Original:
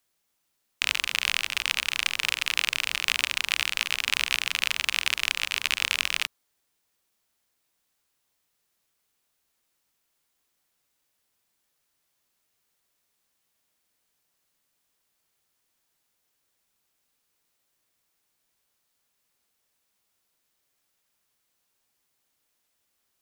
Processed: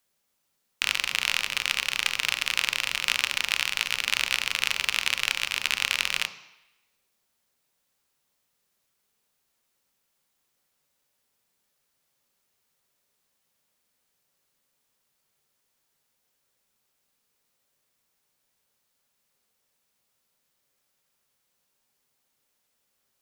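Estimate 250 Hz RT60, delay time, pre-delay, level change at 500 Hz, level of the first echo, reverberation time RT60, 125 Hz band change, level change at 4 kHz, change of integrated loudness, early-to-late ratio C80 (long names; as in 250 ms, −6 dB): 0.75 s, no echo audible, 3 ms, +2.0 dB, no echo audible, 0.90 s, can't be measured, 0.0 dB, 0.0 dB, 14.0 dB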